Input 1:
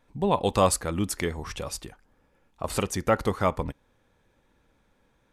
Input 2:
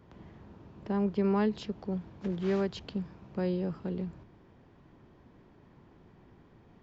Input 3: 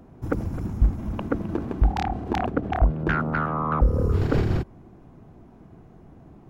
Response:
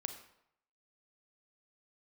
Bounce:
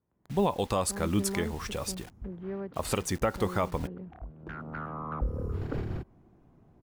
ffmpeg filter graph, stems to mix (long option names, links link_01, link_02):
-filter_complex "[0:a]acrusher=bits=7:mix=0:aa=0.000001,adelay=150,volume=-0.5dB[link_01];[1:a]lowpass=1800,agate=range=-16dB:threshold=-45dB:ratio=16:detection=peak,volume=-7.5dB,asplit=2[link_02][link_03];[2:a]adynamicequalizer=threshold=0.00316:dfrequency=5500:dqfactor=0.84:tfrequency=5500:tqfactor=0.84:attack=5:release=100:ratio=0.375:range=2.5:mode=cutabove:tftype=bell,adelay=1400,volume=-11.5dB[link_04];[link_03]apad=whole_len=348371[link_05];[link_04][link_05]sidechaincompress=threshold=-56dB:ratio=8:attack=45:release=685[link_06];[link_01][link_02][link_06]amix=inputs=3:normalize=0,alimiter=limit=-16dB:level=0:latency=1:release=226"